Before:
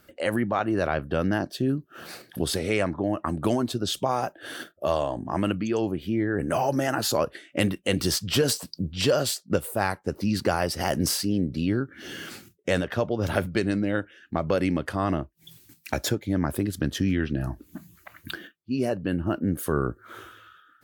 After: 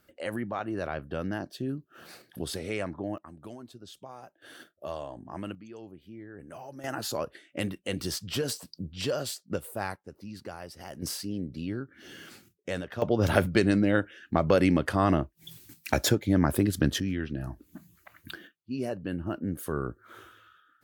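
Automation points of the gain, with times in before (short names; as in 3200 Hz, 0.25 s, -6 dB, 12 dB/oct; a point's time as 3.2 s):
-8 dB
from 3.18 s -20 dB
from 4.42 s -12 dB
from 5.55 s -19.5 dB
from 6.84 s -8 dB
from 9.96 s -17 dB
from 11.02 s -9 dB
from 13.02 s +2 dB
from 17 s -6.5 dB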